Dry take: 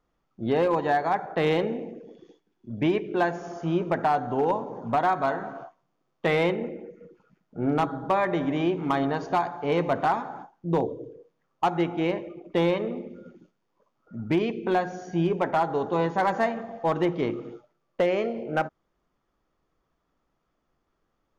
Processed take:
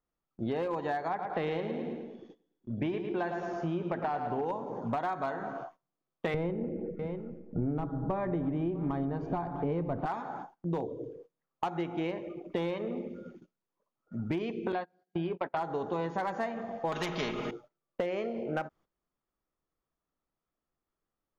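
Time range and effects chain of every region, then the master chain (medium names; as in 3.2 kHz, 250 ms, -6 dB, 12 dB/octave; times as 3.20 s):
1.08–4.45 s: distance through air 110 m + feedback delay 108 ms, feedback 47%, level -9 dB
6.34–10.06 s: tilt EQ -4.5 dB/octave + delay 650 ms -19.5 dB
14.72–15.57 s: gate -28 dBFS, range -31 dB + steep low-pass 4.8 kHz 72 dB/octave + bass shelf 250 Hz -4.5 dB
16.92–17.51 s: comb 4.8 ms, depth 71% + spectrum-flattening compressor 2:1
whole clip: gate -51 dBFS, range -14 dB; compression, threshold -30 dBFS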